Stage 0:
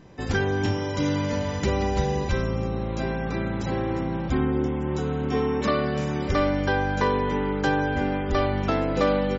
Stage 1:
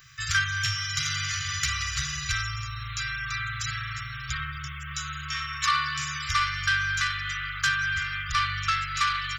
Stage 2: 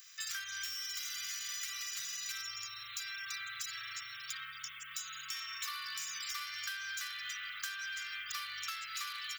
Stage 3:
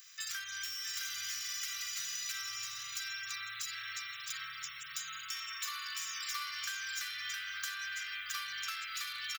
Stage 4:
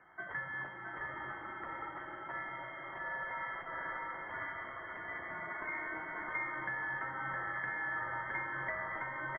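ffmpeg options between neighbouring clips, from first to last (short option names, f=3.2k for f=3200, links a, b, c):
-af "asoftclip=type=tanh:threshold=-17dB,aemphasis=mode=production:type=bsi,afftfilt=real='re*(1-between(b*sr/4096,150,1100))':imag='im*(1-between(b*sr/4096,150,1100))':win_size=4096:overlap=0.75,volume=6dB"
-filter_complex "[0:a]acrossover=split=110|2800[a][b][c];[c]volume=33.5dB,asoftclip=hard,volume=-33.5dB[d];[a][b][d]amix=inputs=3:normalize=0,aderivative,acompressor=threshold=-40dB:ratio=6,volume=2.5dB"
-af "aecho=1:1:664:0.596"
-af "lowpass=f=2.8k:t=q:w=0.5098,lowpass=f=2.8k:t=q:w=0.6013,lowpass=f=2.8k:t=q:w=0.9,lowpass=f=2.8k:t=q:w=2.563,afreqshift=-3300,volume=4dB"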